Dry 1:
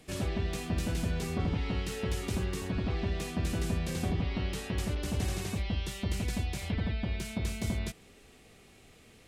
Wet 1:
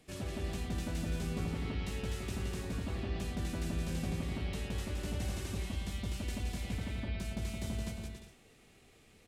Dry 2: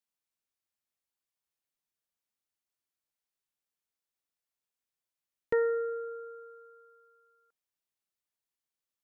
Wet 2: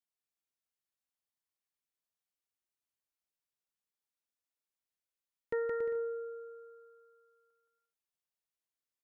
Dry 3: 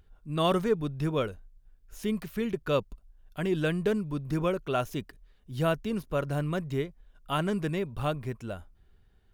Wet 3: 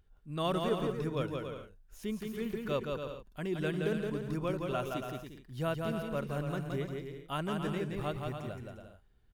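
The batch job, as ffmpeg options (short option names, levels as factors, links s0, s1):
-af "aecho=1:1:170|280.5|352.3|399|429.4:0.631|0.398|0.251|0.158|0.1,volume=0.447"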